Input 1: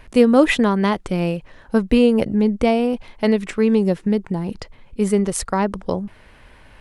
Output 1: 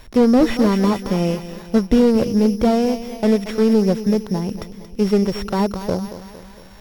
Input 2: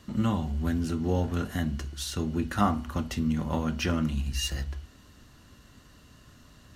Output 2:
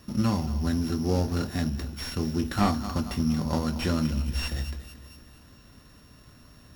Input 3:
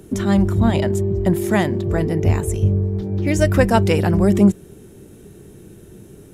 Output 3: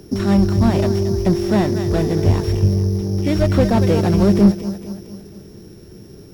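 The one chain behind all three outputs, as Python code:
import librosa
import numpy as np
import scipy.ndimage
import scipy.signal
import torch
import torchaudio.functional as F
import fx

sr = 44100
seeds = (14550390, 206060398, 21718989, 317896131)

y = np.r_[np.sort(x[:len(x) // 8 * 8].reshape(-1, 8), axis=1).ravel(), x[len(x) // 8 * 8:]]
y = fx.echo_feedback(y, sr, ms=229, feedback_pct=53, wet_db=-14.5)
y = fx.slew_limit(y, sr, full_power_hz=110.0)
y = y * 10.0 ** (1.5 / 20.0)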